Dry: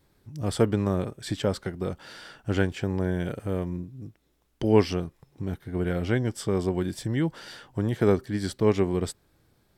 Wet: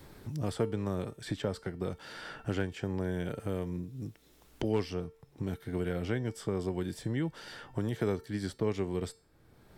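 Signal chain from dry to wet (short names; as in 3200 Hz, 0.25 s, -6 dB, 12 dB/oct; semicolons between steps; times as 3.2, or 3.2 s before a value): hard clip -10 dBFS, distortion -29 dB; resonator 450 Hz, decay 0.37 s, harmonics all, mix 60%; three-band squash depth 70%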